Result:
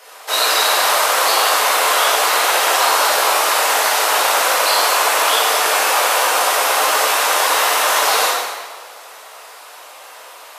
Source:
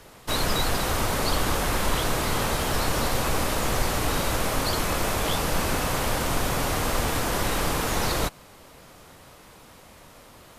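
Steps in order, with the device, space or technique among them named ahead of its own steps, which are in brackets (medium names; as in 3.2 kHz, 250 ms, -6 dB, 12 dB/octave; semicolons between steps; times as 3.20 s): whispering ghost (whisper effect; high-pass 550 Hz 24 dB/octave; reverberation RT60 1.5 s, pre-delay 9 ms, DRR -6.5 dB); trim +6 dB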